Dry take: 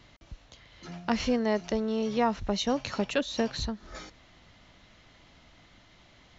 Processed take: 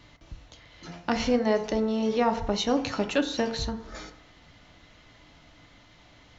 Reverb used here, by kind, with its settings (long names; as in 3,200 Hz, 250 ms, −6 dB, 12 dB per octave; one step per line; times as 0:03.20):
feedback delay network reverb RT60 0.73 s, low-frequency decay 0.85×, high-frequency decay 0.4×, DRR 6 dB
level +1.5 dB